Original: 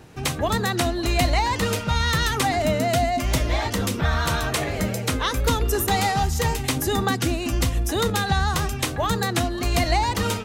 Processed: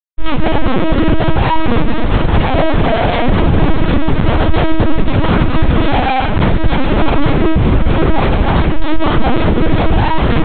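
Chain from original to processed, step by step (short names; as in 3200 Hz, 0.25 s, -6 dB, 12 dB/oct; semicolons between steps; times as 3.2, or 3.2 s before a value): dynamic EQ 2500 Hz, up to -5 dB, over -41 dBFS, Q 0.9; sine folder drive 8 dB, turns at -9 dBFS; fixed phaser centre 500 Hz, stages 6; Schmitt trigger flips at -16.5 dBFS; 7.31–8.17 air absorption 110 m; on a send: diffused feedback echo 0.676 s, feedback 45%, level -12.5 dB; on the sum: shoebox room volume 49 m³, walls mixed, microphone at 2.3 m; LPC vocoder at 8 kHz pitch kept; maximiser -5.5 dB; gain -1 dB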